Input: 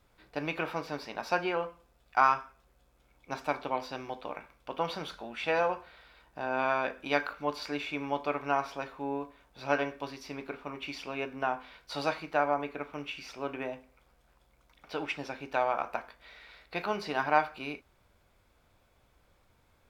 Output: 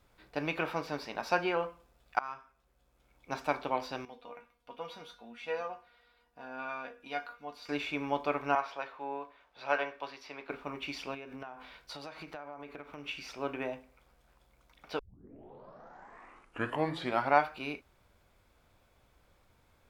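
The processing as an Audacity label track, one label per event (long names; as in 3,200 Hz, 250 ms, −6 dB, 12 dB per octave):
2.190000	3.350000	fade in, from −23.5 dB
4.050000	7.690000	tuned comb filter 240 Hz, decay 0.16 s, mix 90%
8.550000	10.500000	three-way crossover with the lows and the highs turned down lows −15 dB, under 460 Hz, highs −14 dB, over 4,700 Hz
11.140000	13.070000	downward compressor 10 to 1, threshold −40 dBFS
14.990000	14.990000	tape start 2.48 s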